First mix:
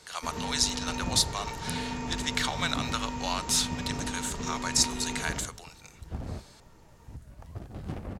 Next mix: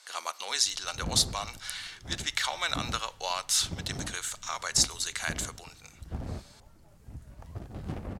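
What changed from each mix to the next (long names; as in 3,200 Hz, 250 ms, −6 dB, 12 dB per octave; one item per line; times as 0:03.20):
first sound: muted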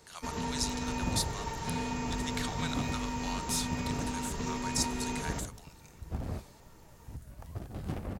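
speech −10.5 dB
first sound: unmuted
master: add high-shelf EQ 11,000 Hz +12 dB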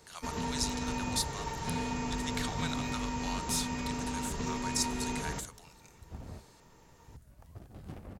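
second sound −8.5 dB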